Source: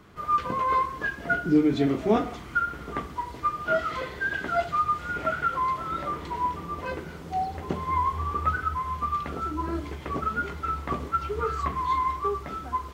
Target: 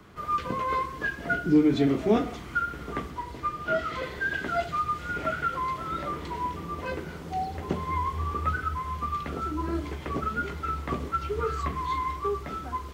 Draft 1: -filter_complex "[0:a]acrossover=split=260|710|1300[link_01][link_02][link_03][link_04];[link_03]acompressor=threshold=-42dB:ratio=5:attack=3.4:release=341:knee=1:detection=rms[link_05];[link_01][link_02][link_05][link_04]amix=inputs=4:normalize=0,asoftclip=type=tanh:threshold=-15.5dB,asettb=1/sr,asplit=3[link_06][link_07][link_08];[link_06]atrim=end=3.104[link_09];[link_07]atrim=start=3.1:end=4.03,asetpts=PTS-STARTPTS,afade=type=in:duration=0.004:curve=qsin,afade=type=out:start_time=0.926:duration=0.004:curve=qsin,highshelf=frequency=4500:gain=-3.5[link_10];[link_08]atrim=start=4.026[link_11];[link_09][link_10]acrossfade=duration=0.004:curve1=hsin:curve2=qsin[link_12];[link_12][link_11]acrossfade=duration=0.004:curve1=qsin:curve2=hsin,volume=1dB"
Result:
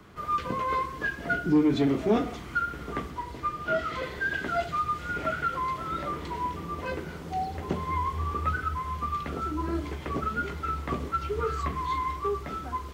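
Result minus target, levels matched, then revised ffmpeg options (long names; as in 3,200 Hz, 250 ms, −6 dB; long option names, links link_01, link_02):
soft clipping: distortion +12 dB
-filter_complex "[0:a]acrossover=split=260|710|1300[link_01][link_02][link_03][link_04];[link_03]acompressor=threshold=-42dB:ratio=5:attack=3.4:release=341:knee=1:detection=rms[link_05];[link_01][link_02][link_05][link_04]amix=inputs=4:normalize=0,asoftclip=type=tanh:threshold=-8dB,asettb=1/sr,asplit=3[link_06][link_07][link_08];[link_06]atrim=end=3.104[link_09];[link_07]atrim=start=3.1:end=4.03,asetpts=PTS-STARTPTS,afade=type=in:duration=0.004:curve=qsin,afade=type=out:start_time=0.926:duration=0.004:curve=qsin,highshelf=frequency=4500:gain=-3.5[link_10];[link_08]atrim=start=4.026[link_11];[link_09][link_10]acrossfade=duration=0.004:curve1=hsin:curve2=qsin[link_12];[link_12][link_11]acrossfade=duration=0.004:curve1=qsin:curve2=hsin,volume=1dB"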